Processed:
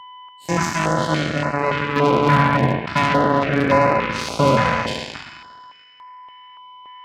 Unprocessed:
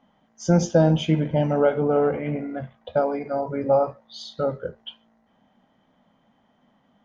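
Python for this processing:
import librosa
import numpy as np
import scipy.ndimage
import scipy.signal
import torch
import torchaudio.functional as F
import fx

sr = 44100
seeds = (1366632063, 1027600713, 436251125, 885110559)

y = fx.spec_trails(x, sr, decay_s=2.07)
y = fx.notch(y, sr, hz=480.0, q=12.0)
y = y + 10.0 ** (-21.5 / 20.0) * np.pad(y, (int(733 * sr / 1000.0), 0))[:len(y)]
y = fx.rider(y, sr, range_db=4, speed_s=0.5)
y = fx.peak_eq(y, sr, hz=210.0, db=fx.steps((0.0, -4.5), (1.96, 5.5)), octaves=2.2)
y = 10.0 ** (-18.5 / 20.0) * np.tanh(y / 10.0 ** (-18.5 / 20.0))
y = fx.low_shelf(y, sr, hz=380.0, db=5.0)
y = y + 10.0 ** (-24.0 / 20.0) * np.sin(2.0 * np.pi * 1000.0 * np.arange(len(y)) / sr)
y = fx.cheby_harmonics(y, sr, harmonics=(2, 3), levels_db=(-30, -8), full_scale_db=-13.0)
y = scipy.signal.sosfilt(scipy.signal.butter(2, 70.0, 'highpass', fs=sr, output='sos'), y)
y = fx.filter_held_notch(y, sr, hz=3.5, low_hz=370.0, high_hz=3300.0)
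y = y * 10.0 ** (7.0 / 20.0)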